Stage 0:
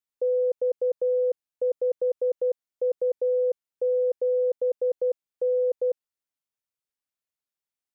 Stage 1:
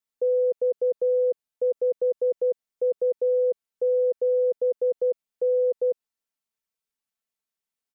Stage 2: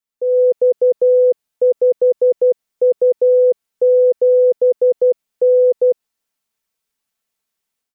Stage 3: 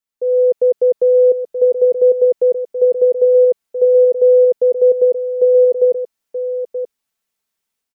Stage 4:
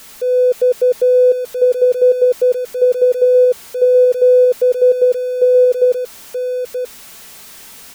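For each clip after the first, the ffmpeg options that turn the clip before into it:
ffmpeg -i in.wav -af "aecho=1:1:4.5:0.65" out.wav
ffmpeg -i in.wav -af "dynaudnorm=framelen=200:gausssize=3:maxgain=10.5dB" out.wav
ffmpeg -i in.wav -af "aecho=1:1:928:0.335" out.wav
ffmpeg -i in.wav -af "aeval=exprs='val(0)+0.5*0.0282*sgn(val(0))':channel_layout=same" out.wav

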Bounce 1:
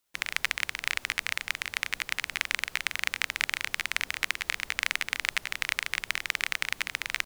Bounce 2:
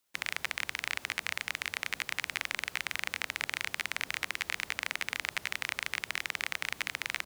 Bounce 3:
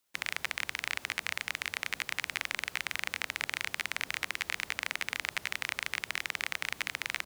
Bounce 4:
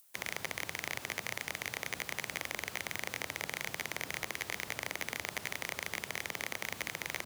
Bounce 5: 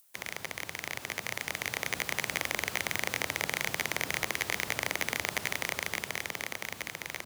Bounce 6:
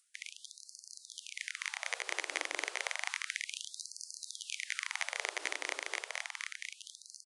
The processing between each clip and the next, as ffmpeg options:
ffmpeg -i in.wav -filter_complex "[0:a]highpass=66,acrossover=split=660|940[link_01][link_02][link_03];[link_03]alimiter=limit=-17dB:level=0:latency=1:release=26[link_04];[link_01][link_02][link_04]amix=inputs=3:normalize=0" out.wav
ffmpeg -i in.wav -af anull out.wav
ffmpeg -i in.wav -filter_complex "[0:a]acrossover=split=250|7500[link_01][link_02][link_03];[link_01]afreqshift=28[link_04];[link_03]acompressor=mode=upward:threshold=-58dB:ratio=2.5[link_05];[link_04][link_02][link_05]amix=inputs=3:normalize=0,asoftclip=type=hard:threshold=-30.5dB,volume=5dB" out.wav
ffmpeg -i in.wav -af "dynaudnorm=framelen=230:gausssize=13:maxgain=6.5dB" out.wav
ffmpeg -i in.wav -af "tremolo=f=4.2:d=0.3,aresample=22050,aresample=44100,afftfilt=real='re*gte(b*sr/1024,260*pow(4300/260,0.5+0.5*sin(2*PI*0.31*pts/sr)))':imag='im*gte(b*sr/1024,260*pow(4300/260,0.5+0.5*sin(2*PI*0.31*pts/sr)))':win_size=1024:overlap=0.75,volume=-3dB" out.wav

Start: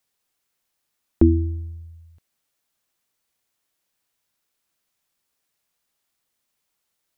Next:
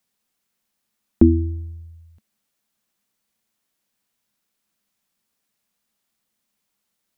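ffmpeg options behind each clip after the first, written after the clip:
ffmpeg -i in.wav -af "equalizer=frequency=210:width=3.3:gain=11.5" out.wav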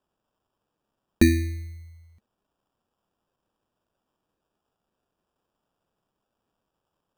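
ffmpeg -i in.wav -af "acrusher=samples=21:mix=1:aa=0.000001,volume=-4.5dB" out.wav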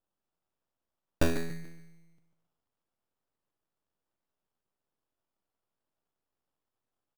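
ffmpeg -i in.wav -af "aecho=1:1:143|286|429|572:0.316|0.101|0.0324|0.0104,aeval=exprs='abs(val(0))':channel_layout=same,volume=-7dB" out.wav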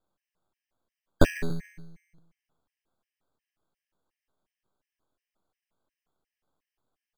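ffmpeg -i in.wav -af "highshelf=frequency=5300:gain=-7.5,afftfilt=real='re*gt(sin(2*PI*2.8*pts/sr)*(1-2*mod(floor(b*sr/1024/1600),2)),0)':imag='im*gt(sin(2*PI*2.8*pts/sr)*(1-2*mod(floor(b*sr/1024/1600),2)),0)':win_size=1024:overlap=0.75,volume=8.5dB" out.wav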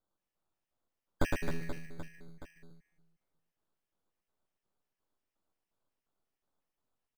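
ffmpeg -i in.wav -filter_complex "[0:a]aeval=exprs='(tanh(2.51*val(0)+0.25)-tanh(0.25))/2.51':channel_layout=same,asplit=2[link_01][link_02];[link_02]aecho=0:1:110|264|479.6|781.4|1204:0.631|0.398|0.251|0.158|0.1[link_03];[link_01][link_03]amix=inputs=2:normalize=0,volume=-6.5dB" out.wav

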